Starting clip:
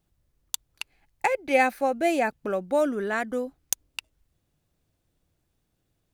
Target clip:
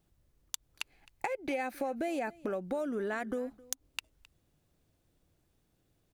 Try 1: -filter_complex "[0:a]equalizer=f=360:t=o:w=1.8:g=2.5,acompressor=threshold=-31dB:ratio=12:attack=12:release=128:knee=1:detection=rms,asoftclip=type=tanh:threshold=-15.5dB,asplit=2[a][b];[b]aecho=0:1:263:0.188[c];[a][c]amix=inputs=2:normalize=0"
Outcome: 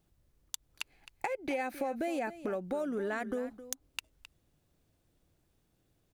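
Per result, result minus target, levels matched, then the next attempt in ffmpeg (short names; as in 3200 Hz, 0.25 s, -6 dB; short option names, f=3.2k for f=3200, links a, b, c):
soft clip: distortion +16 dB; echo-to-direct +8 dB
-filter_complex "[0:a]equalizer=f=360:t=o:w=1.8:g=2.5,acompressor=threshold=-31dB:ratio=12:attack=12:release=128:knee=1:detection=rms,asoftclip=type=tanh:threshold=-5.5dB,asplit=2[a][b];[b]aecho=0:1:263:0.188[c];[a][c]amix=inputs=2:normalize=0"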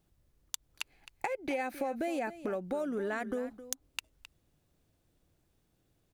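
echo-to-direct +8 dB
-filter_complex "[0:a]equalizer=f=360:t=o:w=1.8:g=2.5,acompressor=threshold=-31dB:ratio=12:attack=12:release=128:knee=1:detection=rms,asoftclip=type=tanh:threshold=-5.5dB,asplit=2[a][b];[b]aecho=0:1:263:0.075[c];[a][c]amix=inputs=2:normalize=0"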